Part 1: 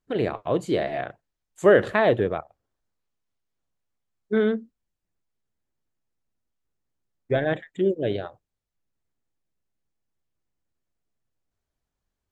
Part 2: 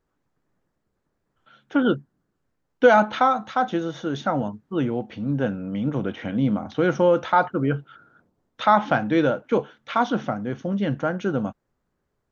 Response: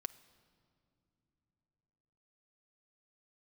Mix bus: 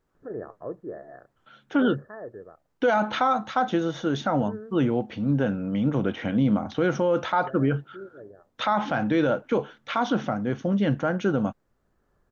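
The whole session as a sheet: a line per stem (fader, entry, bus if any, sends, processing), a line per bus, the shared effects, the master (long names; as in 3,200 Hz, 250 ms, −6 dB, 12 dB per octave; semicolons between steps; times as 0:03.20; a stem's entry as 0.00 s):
−8.5 dB, 0.15 s, no send, upward compression, threshold −32 dBFS; Chebyshev low-pass with heavy ripple 1,800 Hz, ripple 6 dB; automatic ducking −9 dB, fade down 1.15 s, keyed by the second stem
+1.5 dB, 0.00 s, no send, no processing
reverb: not used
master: brickwall limiter −13.5 dBFS, peak gain reduction 10.5 dB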